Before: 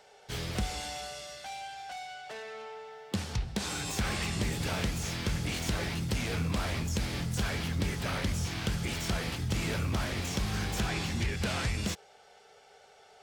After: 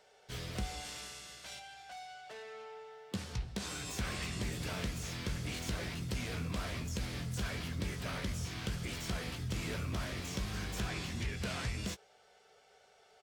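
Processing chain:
0:00.84–0:01.58: ceiling on every frequency bin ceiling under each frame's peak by 18 dB
notch filter 830 Hz, Q 12
double-tracking delay 16 ms −10.5 dB
level −6.5 dB

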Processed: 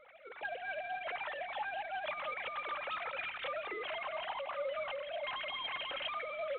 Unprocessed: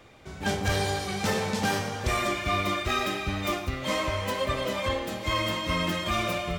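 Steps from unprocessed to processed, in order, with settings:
three sine waves on the formant tracks
mains-hum notches 50/100/150/200/250/300/350/400 Hz
dynamic equaliser 340 Hz, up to +4 dB, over −53 dBFS, Q 4.2
brickwall limiter −24.5 dBFS, peak gain reduction 11.5 dB
downward compressor 8 to 1, threshold −34 dBFS, peak gain reduction 6.5 dB
flanger 1.6 Hz, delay 2 ms, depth 1.9 ms, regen +33%
on a send: feedback echo with a high-pass in the loop 162 ms, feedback 81%, high-pass 430 Hz, level −22 dB
on the sum: level +1 dB
IMA ADPCM 32 kbit/s 8,000 Hz

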